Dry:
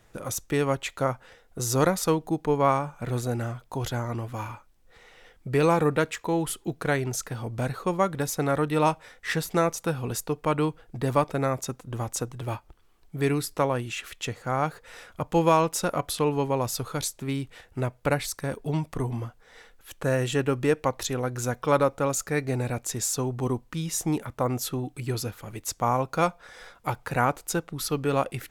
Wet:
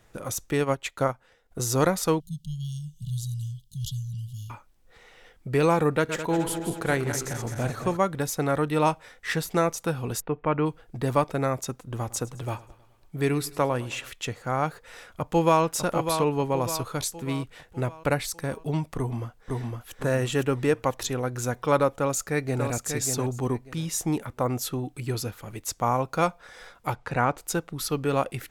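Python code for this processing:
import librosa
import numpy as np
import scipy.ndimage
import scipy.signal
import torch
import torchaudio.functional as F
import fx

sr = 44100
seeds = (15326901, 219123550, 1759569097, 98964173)

y = fx.transient(x, sr, attack_db=2, sustain_db=-9, at=(0.6, 1.68))
y = fx.brickwall_bandstop(y, sr, low_hz=200.0, high_hz=2800.0, at=(2.2, 4.5))
y = fx.reverse_delay_fb(y, sr, ms=106, feedback_pct=72, wet_db=-8.5, at=(5.96, 7.97))
y = fx.lowpass(y, sr, hz=2600.0, slope=24, at=(10.2, 10.65), fade=0.02)
y = fx.echo_feedback(y, sr, ms=106, feedback_pct=57, wet_db=-20, at=(11.96, 14.11))
y = fx.echo_throw(y, sr, start_s=15.07, length_s=0.56, ms=600, feedback_pct=50, wet_db=-7.5)
y = fx.echo_throw(y, sr, start_s=18.97, length_s=0.96, ms=510, feedback_pct=40, wet_db=-1.5)
y = fx.echo_throw(y, sr, start_s=21.91, length_s=0.77, ms=590, feedback_pct=20, wet_db=-6.0)
y = fx.air_absorb(y, sr, metres=68.0, at=(26.94, 27.38))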